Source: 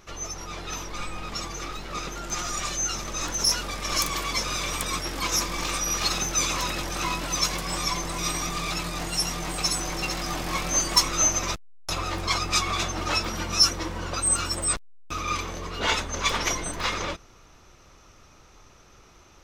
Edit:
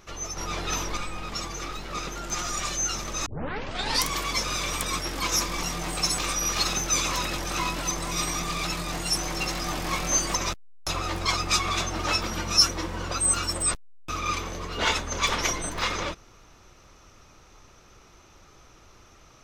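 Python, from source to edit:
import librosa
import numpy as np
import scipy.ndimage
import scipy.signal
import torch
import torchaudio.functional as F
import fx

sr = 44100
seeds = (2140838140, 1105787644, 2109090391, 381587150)

y = fx.edit(x, sr, fx.clip_gain(start_s=0.37, length_s=0.6, db=5.0),
    fx.tape_start(start_s=3.26, length_s=0.84),
    fx.cut(start_s=7.36, length_s=0.62),
    fx.move(start_s=9.24, length_s=0.55, to_s=5.63),
    fx.cut(start_s=10.97, length_s=0.4), tone=tone)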